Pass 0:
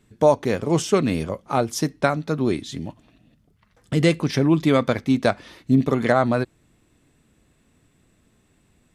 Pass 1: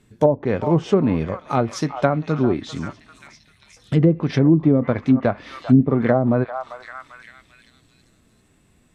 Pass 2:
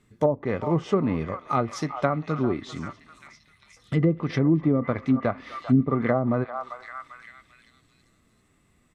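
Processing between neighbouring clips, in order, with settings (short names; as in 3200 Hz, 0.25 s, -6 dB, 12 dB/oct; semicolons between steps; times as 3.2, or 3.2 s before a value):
delay with a stepping band-pass 0.394 s, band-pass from 950 Hz, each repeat 0.7 oct, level -9.5 dB; harmonic-percussive split percussive -5 dB; treble ducked by the level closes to 450 Hz, closed at -14 dBFS; gain +4.5 dB
small resonant body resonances 1200/2000 Hz, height 11 dB, ringing for 30 ms; speakerphone echo 0.25 s, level -23 dB; gain -6 dB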